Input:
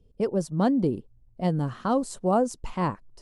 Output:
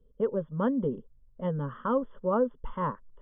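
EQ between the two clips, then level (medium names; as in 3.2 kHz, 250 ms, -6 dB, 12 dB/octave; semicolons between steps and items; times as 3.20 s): brick-wall FIR low-pass 3.5 kHz; peaking EQ 190 Hz -8 dB 0.4 oct; static phaser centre 490 Hz, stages 8; 0.0 dB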